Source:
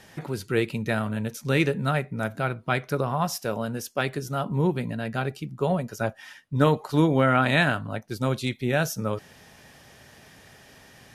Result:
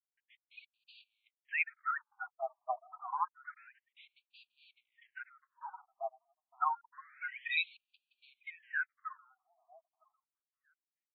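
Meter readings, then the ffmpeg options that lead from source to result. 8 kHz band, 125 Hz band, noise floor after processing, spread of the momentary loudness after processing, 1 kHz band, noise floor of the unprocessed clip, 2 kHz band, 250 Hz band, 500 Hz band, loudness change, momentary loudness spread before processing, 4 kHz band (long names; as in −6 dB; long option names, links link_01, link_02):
below −40 dB, below −40 dB, below −85 dBFS, 21 LU, −10.0 dB, −52 dBFS, −10.0 dB, below −40 dB, −23.5 dB, −12.5 dB, 10 LU, −13.5 dB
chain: -filter_complex "[0:a]bandreject=frequency=233.6:width_type=h:width=4,bandreject=frequency=467.2:width_type=h:width=4,bandreject=frequency=700.8:width_type=h:width=4,bandreject=frequency=934.4:width_type=h:width=4,asubboost=boost=4:cutoff=95,afftfilt=real='re*gte(hypot(re,im),0.141)':imag='im*gte(hypot(re,im),0.141)':win_size=1024:overlap=0.75,bass=frequency=250:gain=-10,treble=frequency=4000:gain=7,aeval=exprs='sgn(val(0))*max(abs(val(0))-0.00531,0)':channel_layout=same,acrossover=split=6900[link_01][link_02];[link_02]acompressor=threshold=-49dB:ratio=4:attack=1:release=60[link_03];[link_01][link_03]amix=inputs=2:normalize=0,asplit=2[link_04][link_05];[link_05]adelay=953,lowpass=frequency=2600:poles=1,volume=-23dB,asplit=2[link_06][link_07];[link_07]adelay=953,lowpass=frequency=2600:poles=1,volume=0.17[link_08];[link_06][link_08]amix=inputs=2:normalize=0[link_09];[link_04][link_09]amix=inputs=2:normalize=0,afftfilt=real='re*between(b*sr/1024,860*pow(3400/860,0.5+0.5*sin(2*PI*0.28*pts/sr))/1.41,860*pow(3400/860,0.5+0.5*sin(2*PI*0.28*pts/sr))*1.41)':imag='im*between(b*sr/1024,860*pow(3400/860,0.5+0.5*sin(2*PI*0.28*pts/sr))/1.41,860*pow(3400/860,0.5+0.5*sin(2*PI*0.28*pts/sr))*1.41)':win_size=1024:overlap=0.75,volume=-2dB"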